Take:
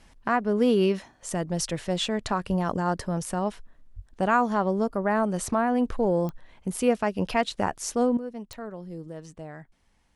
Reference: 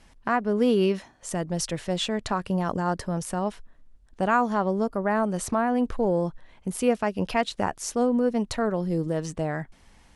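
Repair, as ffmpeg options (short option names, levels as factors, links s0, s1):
-filter_complex "[0:a]adeclick=t=4,asplit=3[s0][s1][s2];[s0]afade=t=out:st=2.48:d=0.02[s3];[s1]highpass=f=140:w=0.5412,highpass=f=140:w=1.3066,afade=t=in:st=2.48:d=0.02,afade=t=out:st=2.6:d=0.02[s4];[s2]afade=t=in:st=2.6:d=0.02[s5];[s3][s4][s5]amix=inputs=3:normalize=0,asplit=3[s6][s7][s8];[s6]afade=t=out:st=3.95:d=0.02[s9];[s7]highpass=f=140:w=0.5412,highpass=f=140:w=1.3066,afade=t=in:st=3.95:d=0.02,afade=t=out:st=4.07:d=0.02[s10];[s8]afade=t=in:st=4.07:d=0.02[s11];[s9][s10][s11]amix=inputs=3:normalize=0,asetnsamples=n=441:p=0,asendcmd='8.17 volume volume 12dB',volume=1"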